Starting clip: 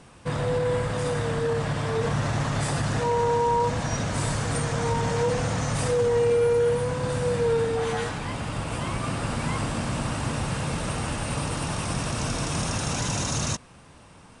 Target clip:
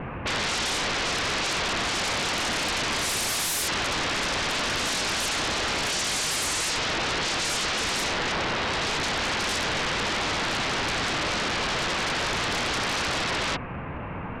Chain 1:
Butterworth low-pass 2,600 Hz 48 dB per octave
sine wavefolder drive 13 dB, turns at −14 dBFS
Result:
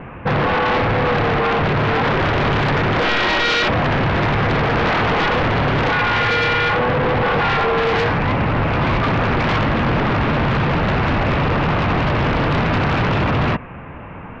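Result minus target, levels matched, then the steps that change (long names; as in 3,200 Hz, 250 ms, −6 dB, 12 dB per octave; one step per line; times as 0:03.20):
sine wavefolder: distortion −40 dB
change: sine wavefolder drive 13 dB, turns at −24 dBFS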